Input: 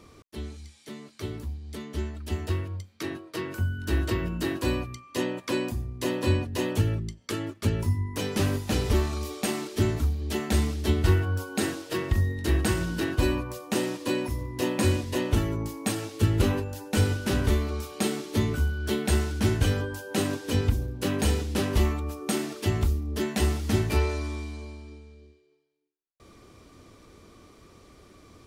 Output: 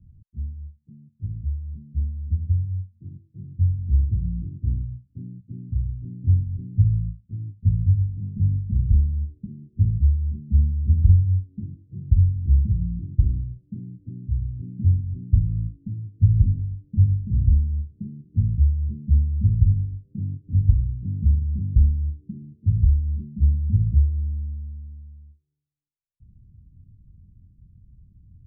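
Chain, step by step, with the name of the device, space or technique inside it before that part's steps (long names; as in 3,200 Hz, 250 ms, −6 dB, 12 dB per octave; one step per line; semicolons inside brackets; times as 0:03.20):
the neighbour's flat through the wall (low-pass filter 150 Hz 24 dB per octave; parametric band 190 Hz +3 dB)
low-shelf EQ 240 Hz +8.5 dB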